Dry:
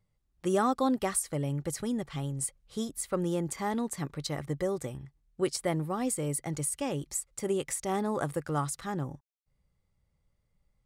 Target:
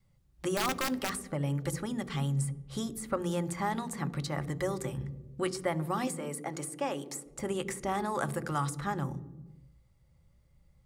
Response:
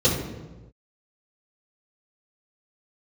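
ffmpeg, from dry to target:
-filter_complex "[0:a]asettb=1/sr,asplit=3[a][b][c];[a]atrim=end=6.074[d];[b]atrim=start=6.07:end=7.26,asetpts=PTS-STARTPTS,afade=t=in:d=0.004:c=qsin,afade=t=out:st=1.186:d=0.004:c=qsin,highpass=370[e];[c]atrim=start=7.256[f];[d][e]acrossfade=d=0.004:c1=hsin:c2=qsin[g];[g][f]acrossfade=d=0.004:c1=qsin:c2=hsin,acrossover=split=790|1900[h][i][j];[h]acompressor=threshold=-43dB:ratio=4[k];[i]acompressor=threshold=-37dB:ratio=4[l];[j]acompressor=threshold=-49dB:ratio=4[m];[k][l][m]amix=inputs=3:normalize=0,adynamicequalizer=threshold=0.00178:dfrequency=590:dqfactor=2.5:tfrequency=590:tqfactor=2.5:attack=5:release=100:ratio=0.375:range=2.5:mode=cutabove:tftype=bell,asettb=1/sr,asplit=3[n][o][p];[n]atrim=end=0.544[q];[o]atrim=start=0.54:end=1.27,asetpts=PTS-STARTPTS,afade=t=in:d=0.004:c=qsin,afade=t=out:st=0.726:d=0.004:c=qsin,aeval=exprs='(mod(29.9*val(0)+1,2)-1)/29.9':c=same[r];[p]atrim=start=1.266[s];[q][r]acrossfade=d=0.004:c1=hsin:c2=qsin[t];[t][s]acrossfade=d=0.004:c1=qsin:c2=hsin,asplit=2[u][v];[1:a]atrim=start_sample=2205,lowshelf=f=340:g=7[w];[v][w]afir=irnorm=-1:irlink=0,volume=-30.5dB[x];[u][x]amix=inputs=2:normalize=0,volume=6.5dB"

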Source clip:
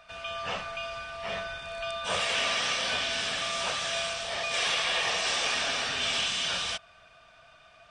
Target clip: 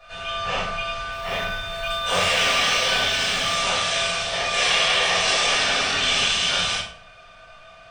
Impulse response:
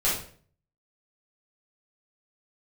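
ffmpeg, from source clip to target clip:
-filter_complex "[0:a]asettb=1/sr,asplit=3[a][b][c];[a]atrim=end=1.114[d];[b]atrim=start=1.11:end=3.54,asetpts=PTS-STARTPTS,afade=t=in:d=0.004:c=qsin,afade=t=out:st=2.426:d=0.004:c=qsin,acrusher=bits=6:mode=log:mix=0:aa=0.000001[e];[c]atrim=start=3.536[f];[d][e]acrossfade=d=0.004:c1=hsin:c2=qsin[g];[g][f]acrossfade=d=0.004:c1=qsin:c2=hsin[h];[1:a]atrim=start_sample=2205[i];[h][i]afir=irnorm=-1:irlink=0,volume=-3dB"

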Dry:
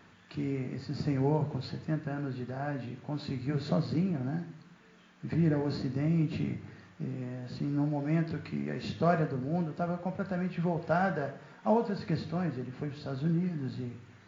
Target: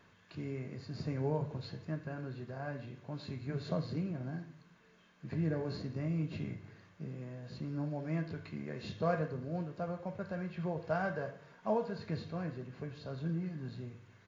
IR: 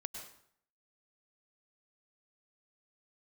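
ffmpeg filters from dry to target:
-af "aecho=1:1:1.9:0.32,volume=-6dB"

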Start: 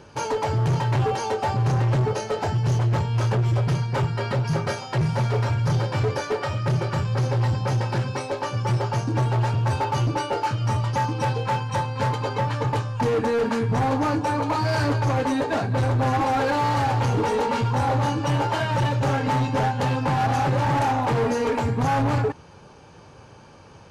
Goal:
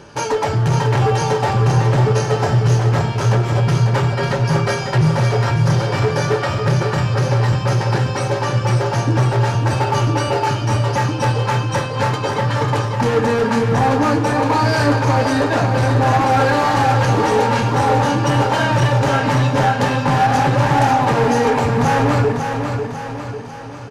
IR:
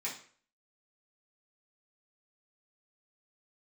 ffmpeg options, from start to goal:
-filter_complex "[0:a]aecho=1:1:546|1092|1638|2184|2730|3276:0.473|0.241|0.123|0.0628|0.032|0.0163,asplit=2[a][b];[1:a]atrim=start_sample=2205,asetrate=32193,aresample=44100[c];[b][c]afir=irnorm=-1:irlink=0,volume=-10.5dB[d];[a][d]amix=inputs=2:normalize=0,acontrast=37"

